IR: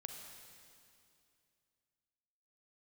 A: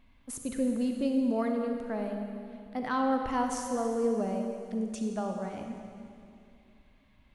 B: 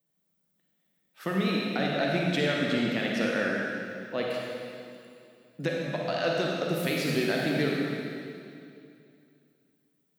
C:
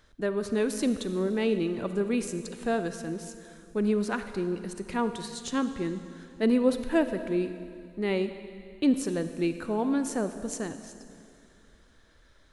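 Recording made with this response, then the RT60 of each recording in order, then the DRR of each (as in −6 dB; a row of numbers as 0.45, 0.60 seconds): A; 2.5, 2.5, 2.5 seconds; 3.0, −3.0, 9.5 decibels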